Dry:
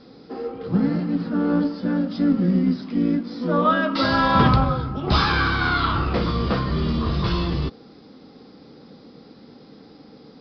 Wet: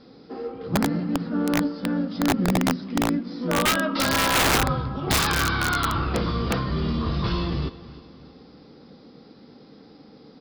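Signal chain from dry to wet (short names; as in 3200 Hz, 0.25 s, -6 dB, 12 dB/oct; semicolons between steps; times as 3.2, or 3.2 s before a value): feedback echo 0.316 s, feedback 43%, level -18 dB; wrapped overs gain 12 dB; gain -2.5 dB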